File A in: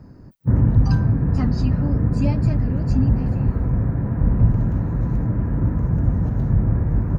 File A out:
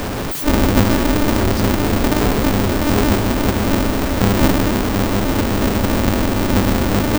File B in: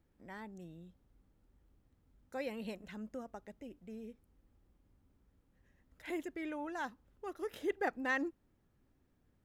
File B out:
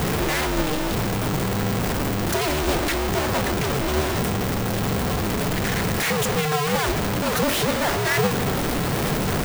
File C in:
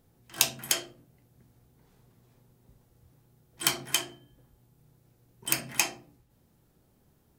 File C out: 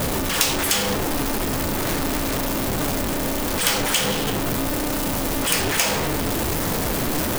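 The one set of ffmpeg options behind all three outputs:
ffmpeg -i in.wav -af "aeval=exprs='val(0)+0.5*0.15*sgn(val(0))':channel_layout=same,flanger=delay=2.4:depth=4.8:regen=68:speed=1.2:shape=sinusoidal,aeval=exprs='val(0)*sgn(sin(2*PI*150*n/s))':channel_layout=same,volume=4dB" out.wav

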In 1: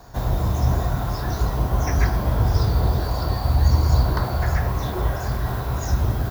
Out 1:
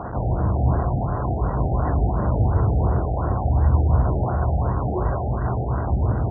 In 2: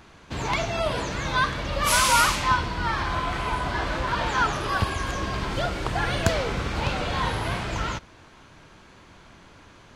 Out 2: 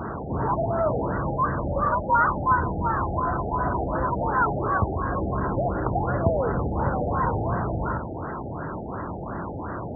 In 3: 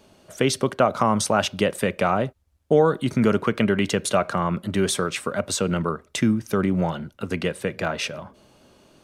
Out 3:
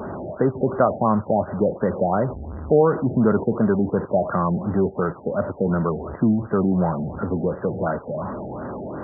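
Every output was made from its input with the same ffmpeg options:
ffmpeg -i in.wav -af "aeval=exprs='val(0)+0.5*0.0668*sgn(val(0))':channel_layout=same,highpass=64,equalizer=frequency=1800:width_type=o:width=0.27:gain=-11.5,afftfilt=real='re*lt(b*sr/1024,830*pow(2000/830,0.5+0.5*sin(2*PI*2.8*pts/sr)))':imag='im*lt(b*sr/1024,830*pow(2000/830,0.5+0.5*sin(2*PI*2.8*pts/sr)))':win_size=1024:overlap=0.75" out.wav

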